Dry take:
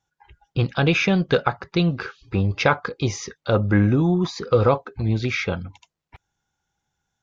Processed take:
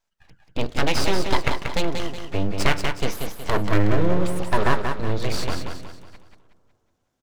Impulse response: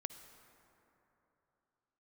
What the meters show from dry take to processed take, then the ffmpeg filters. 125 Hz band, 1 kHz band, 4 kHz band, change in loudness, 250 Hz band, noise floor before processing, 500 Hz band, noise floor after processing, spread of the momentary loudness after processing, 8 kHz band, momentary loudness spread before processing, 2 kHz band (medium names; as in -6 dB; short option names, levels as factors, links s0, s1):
-5.5 dB, +0.5 dB, +1.0 dB, -3.5 dB, -5.0 dB, -82 dBFS, -3.5 dB, -75 dBFS, 10 LU, no reading, 10 LU, -2.0 dB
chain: -filter_complex "[0:a]aeval=exprs='abs(val(0))':c=same,aecho=1:1:184|368|552|736|920:0.501|0.205|0.0842|0.0345|0.0142,asplit=2[s0][s1];[1:a]atrim=start_sample=2205,lowpass=1300,adelay=38[s2];[s1][s2]afir=irnorm=-1:irlink=0,volume=0.251[s3];[s0][s3]amix=inputs=2:normalize=0"